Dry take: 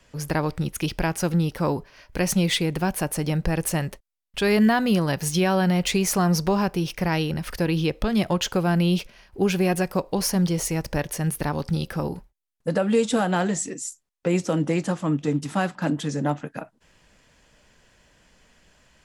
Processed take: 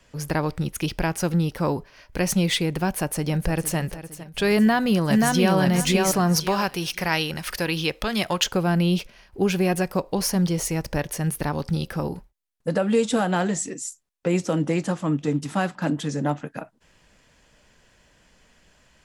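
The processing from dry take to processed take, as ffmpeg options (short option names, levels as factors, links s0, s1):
-filter_complex "[0:a]asplit=2[s0][s1];[s1]afade=t=in:st=2.87:d=0.01,afade=t=out:st=3.77:d=0.01,aecho=0:1:460|920|1380|1840|2300:0.211349|0.105674|0.0528372|0.0264186|0.0132093[s2];[s0][s2]amix=inputs=2:normalize=0,asplit=2[s3][s4];[s4]afade=t=in:st=4.57:d=0.01,afade=t=out:st=5.58:d=0.01,aecho=0:1:530|1060|1590|2120:0.841395|0.210349|0.0525872|0.0131468[s5];[s3][s5]amix=inputs=2:normalize=0,asettb=1/sr,asplit=3[s6][s7][s8];[s6]atrim=end=6.364[s9];[s7]atrim=start=6.36:end=8.44,asetpts=PTS-STARTPTS,afade=t=in:d=0.004:c=qsin,afade=t=out:st=2.076:d=0.004:c=qsin,tiltshelf=f=650:g=-6.5[s10];[s8]atrim=start=8.436[s11];[s9][s10]acrossfade=d=0.004:c1=hsin:c2=qsin[s12];[s12][s11]acrossfade=d=0.004:c1=qsin:c2=hsin"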